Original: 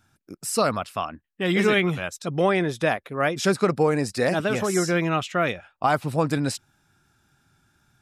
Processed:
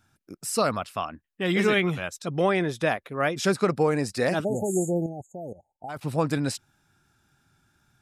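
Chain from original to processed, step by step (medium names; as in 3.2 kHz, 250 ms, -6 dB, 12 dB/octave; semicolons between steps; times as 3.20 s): 5.06–6.03 s: level held to a coarse grid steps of 16 dB; 4.44–5.89 s: spectral selection erased 900–6400 Hz; trim -2 dB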